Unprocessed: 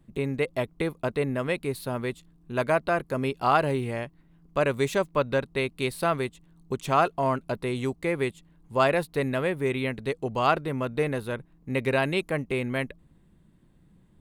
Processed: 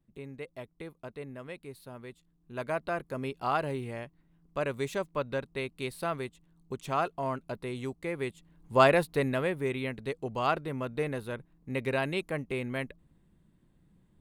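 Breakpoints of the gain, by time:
2.08 s -15 dB
2.85 s -7.5 dB
8.18 s -7.5 dB
8.79 s +1.5 dB
9.78 s -5.5 dB

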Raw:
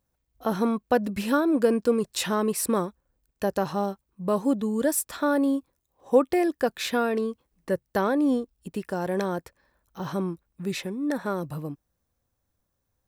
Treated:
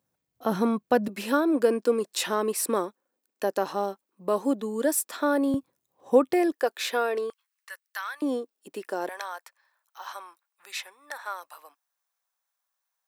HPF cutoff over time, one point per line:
HPF 24 dB/oct
110 Hz
from 1.08 s 260 Hz
from 5.54 s 120 Hz
from 6.52 s 360 Hz
from 7.3 s 1300 Hz
from 8.22 s 310 Hz
from 9.09 s 830 Hz

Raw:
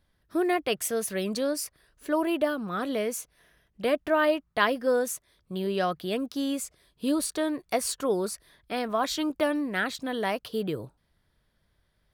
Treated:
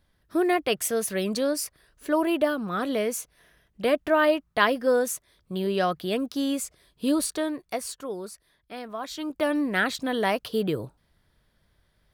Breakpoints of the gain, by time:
7.22 s +2.5 dB
8.09 s -7.5 dB
9.07 s -7.5 dB
9.61 s +4 dB

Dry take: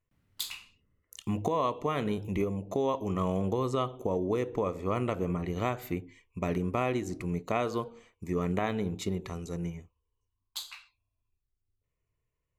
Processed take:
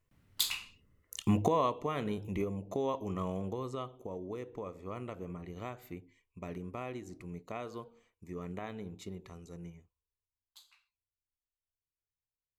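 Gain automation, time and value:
1.26 s +4.5 dB
1.87 s -4.5 dB
2.95 s -4.5 dB
4.07 s -11.5 dB
9.69 s -11.5 dB
10.64 s -20 dB

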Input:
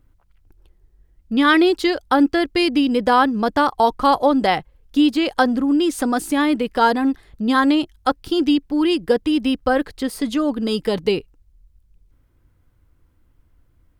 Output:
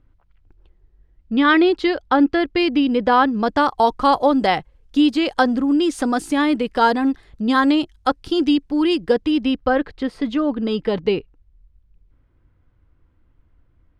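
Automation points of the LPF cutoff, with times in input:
3.1 s 3700 Hz
3.73 s 8000 Hz
8.85 s 8000 Hz
9.9 s 3100 Hz

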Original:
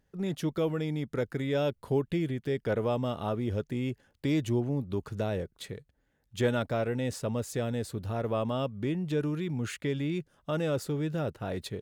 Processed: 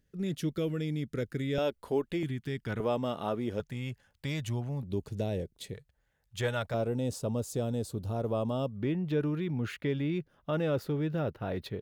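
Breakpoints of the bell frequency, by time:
bell -14.5 dB 1 oct
870 Hz
from 1.58 s 120 Hz
from 2.23 s 540 Hz
from 2.8 s 79 Hz
from 3.6 s 330 Hz
from 4.83 s 1300 Hz
from 5.74 s 280 Hz
from 6.74 s 1900 Hz
from 8.76 s 8000 Hz

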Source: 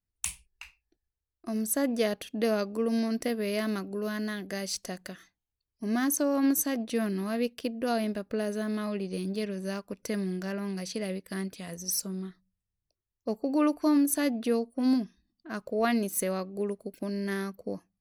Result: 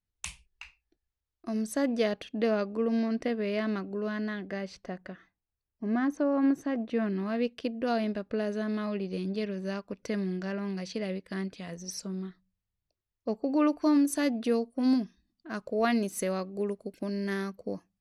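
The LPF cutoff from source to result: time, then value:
1.78 s 5700 Hz
2.64 s 3200 Hz
4.2 s 3200 Hz
4.86 s 1900 Hz
6.77 s 1900 Hz
7.6 s 4500 Hz
13.57 s 4500 Hz
14.09 s 7900 Hz

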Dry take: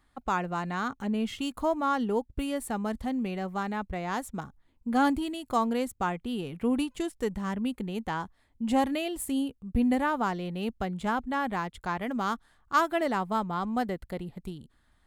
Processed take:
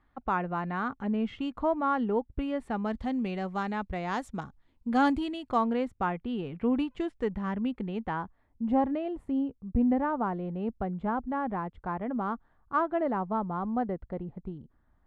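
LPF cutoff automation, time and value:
2.55 s 2100 Hz
3.16 s 5300 Hz
5.11 s 5300 Hz
5.73 s 2400 Hz
7.93 s 2400 Hz
8.63 s 1100 Hz

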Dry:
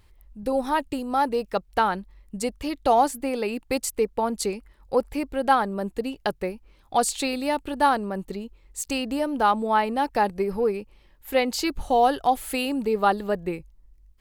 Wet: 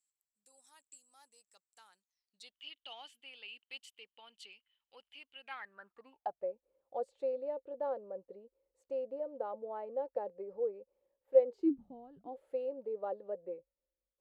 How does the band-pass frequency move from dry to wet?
band-pass, Q 14
1.97 s 7700 Hz
2.56 s 3000 Hz
5.33 s 3000 Hz
6.52 s 530 Hz
11.47 s 530 Hz
12.11 s 110 Hz
12.36 s 530 Hz

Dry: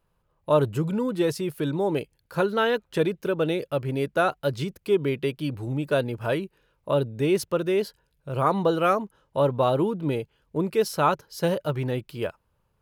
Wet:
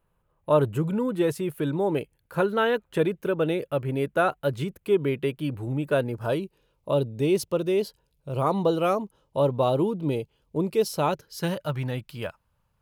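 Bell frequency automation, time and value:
bell -9.5 dB 0.78 oct
5.95 s 5000 Hz
6.41 s 1600 Hz
10.99 s 1600 Hz
11.62 s 380 Hz

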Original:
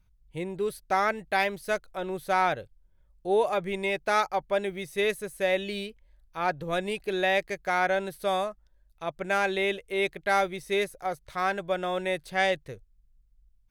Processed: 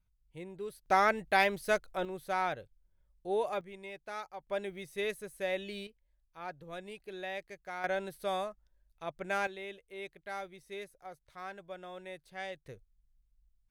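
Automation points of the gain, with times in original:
-11.5 dB
from 0.86 s -1 dB
from 2.05 s -8 dB
from 3.61 s -17 dB
from 4.47 s -8.5 dB
from 5.87 s -15 dB
from 7.84 s -7 dB
from 9.47 s -16.5 dB
from 12.66 s -8 dB

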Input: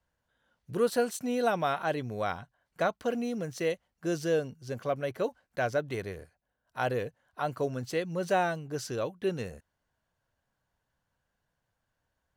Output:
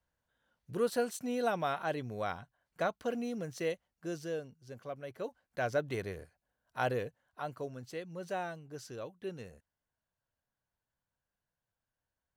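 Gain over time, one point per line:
3.69 s -4.5 dB
4.49 s -11.5 dB
5.03 s -11.5 dB
5.8 s -2 dB
6.84 s -2 dB
7.74 s -10.5 dB

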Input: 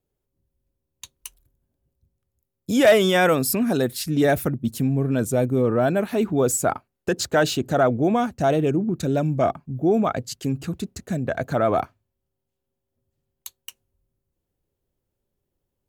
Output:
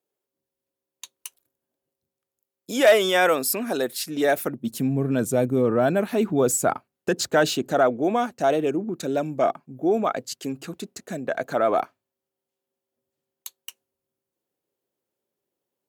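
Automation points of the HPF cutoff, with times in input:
4.36 s 380 Hz
4.96 s 140 Hz
7.22 s 140 Hz
7.95 s 300 Hz

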